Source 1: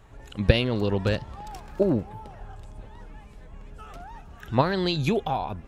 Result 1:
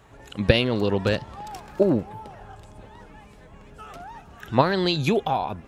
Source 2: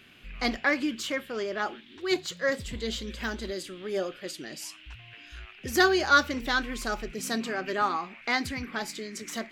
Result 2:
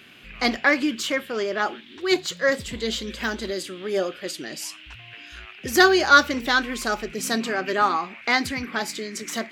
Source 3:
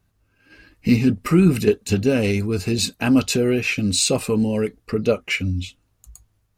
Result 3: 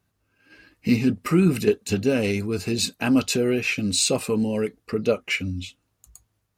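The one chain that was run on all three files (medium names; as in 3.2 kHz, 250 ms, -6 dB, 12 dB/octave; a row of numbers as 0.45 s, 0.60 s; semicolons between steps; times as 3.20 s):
high-pass 140 Hz 6 dB/octave; normalise loudness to -23 LUFS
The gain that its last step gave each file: +3.5 dB, +6.5 dB, -2.0 dB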